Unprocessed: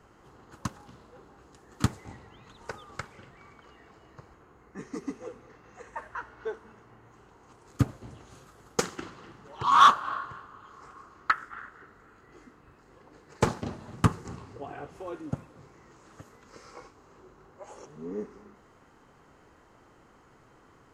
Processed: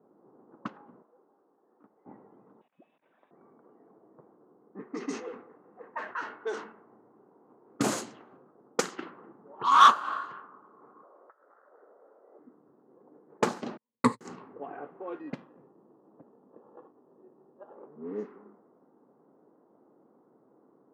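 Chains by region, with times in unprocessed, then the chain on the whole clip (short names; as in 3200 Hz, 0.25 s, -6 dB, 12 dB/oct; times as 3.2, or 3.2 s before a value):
1.02–2.06 HPF 1100 Hz 6 dB/oct + compressor 2.5:1, threshold -55 dBFS
2.61–3.31 negative-ratio compressor -50 dBFS + inverted band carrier 3800 Hz
4.93–8.37 bell 7800 Hz +13 dB 2.3 oct + sustainer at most 93 dB/s
11.03–12.39 resonant high-pass 560 Hz, resonance Q 4.4 + compressor, threshold -47 dBFS
13.77–14.21 gate -37 dBFS, range -49 dB + ripple EQ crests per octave 0.98, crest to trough 15 dB
15.19–17.75 air absorption 370 m + sample-rate reducer 2200 Hz
whole clip: low-pass opened by the level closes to 1200 Hz, open at -26 dBFS; HPF 200 Hz 24 dB/oct; low-pass opened by the level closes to 560 Hz, open at -27.5 dBFS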